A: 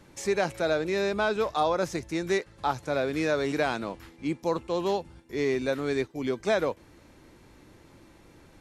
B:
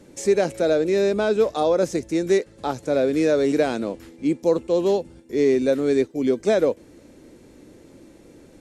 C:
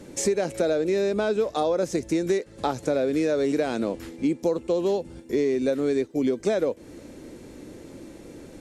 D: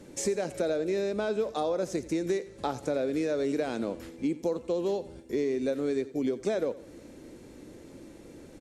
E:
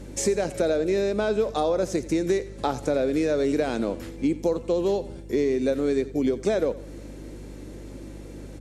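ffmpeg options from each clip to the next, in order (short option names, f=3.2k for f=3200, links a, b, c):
-af "equalizer=f=250:t=o:w=1:g=8,equalizer=f=500:t=o:w=1:g=9,equalizer=f=1k:t=o:w=1:g=-5,equalizer=f=8k:t=o:w=1:g=7"
-af "acompressor=threshold=-26dB:ratio=6,volume=5dB"
-af "aecho=1:1:87|174|261|348:0.141|0.0622|0.0273|0.012,volume=-5.5dB"
-af "aeval=exprs='val(0)+0.00501*(sin(2*PI*50*n/s)+sin(2*PI*2*50*n/s)/2+sin(2*PI*3*50*n/s)/3+sin(2*PI*4*50*n/s)/4+sin(2*PI*5*50*n/s)/5)':c=same,volume=5.5dB"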